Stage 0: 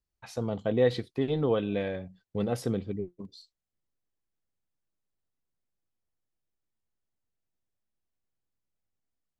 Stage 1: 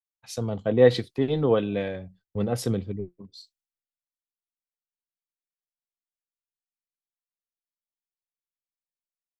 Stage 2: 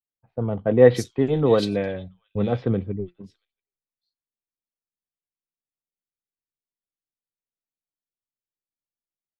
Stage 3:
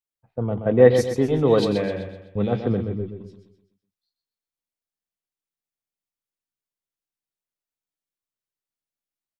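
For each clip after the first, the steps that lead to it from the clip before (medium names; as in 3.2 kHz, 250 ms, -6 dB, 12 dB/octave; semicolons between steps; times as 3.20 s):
in parallel at +0.5 dB: compression 4:1, threshold -35 dBFS, peak gain reduction 14 dB; on the sum: three bands expanded up and down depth 100%
bands offset in time lows, highs 680 ms, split 3 kHz; level-controlled noise filter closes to 450 Hz, open at -20 dBFS; trim +3.5 dB
feedback delay 127 ms, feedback 41%, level -8 dB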